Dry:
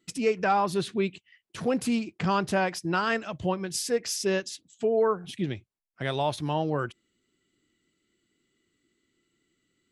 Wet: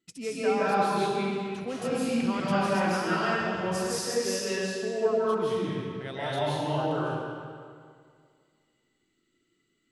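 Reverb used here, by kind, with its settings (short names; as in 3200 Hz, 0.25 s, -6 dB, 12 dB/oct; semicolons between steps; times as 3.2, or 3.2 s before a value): digital reverb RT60 2.1 s, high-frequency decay 0.85×, pre-delay 0.115 s, DRR -9.5 dB; gain -9.5 dB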